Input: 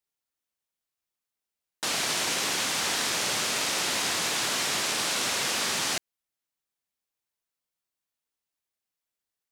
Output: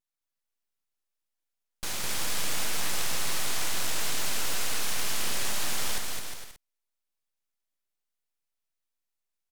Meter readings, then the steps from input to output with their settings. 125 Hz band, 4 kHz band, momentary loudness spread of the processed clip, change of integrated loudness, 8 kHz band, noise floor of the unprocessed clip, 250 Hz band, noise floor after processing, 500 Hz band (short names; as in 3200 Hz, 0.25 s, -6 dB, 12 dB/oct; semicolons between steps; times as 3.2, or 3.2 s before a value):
+2.0 dB, -6.0 dB, 6 LU, -4.5 dB, -3.5 dB, under -85 dBFS, -5.0 dB, -85 dBFS, -5.5 dB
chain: full-wave rectifier; bouncing-ball echo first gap 0.21 s, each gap 0.7×, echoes 5; vibrato 0.49 Hz 9.7 cents; gain -2 dB